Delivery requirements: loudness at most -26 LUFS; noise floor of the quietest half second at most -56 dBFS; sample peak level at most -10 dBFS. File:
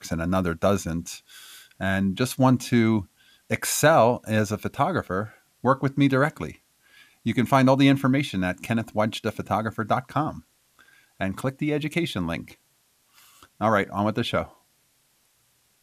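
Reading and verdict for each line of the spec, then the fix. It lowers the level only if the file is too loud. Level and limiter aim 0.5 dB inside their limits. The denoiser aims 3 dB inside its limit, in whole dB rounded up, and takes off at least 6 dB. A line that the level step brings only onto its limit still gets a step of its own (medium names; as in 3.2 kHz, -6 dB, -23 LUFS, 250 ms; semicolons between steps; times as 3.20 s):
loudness -24.0 LUFS: fail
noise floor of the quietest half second -66 dBFS: pass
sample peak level -6.0 dBFS: fail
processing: trim -2.5 dB; peak limiter -10.5 dBFS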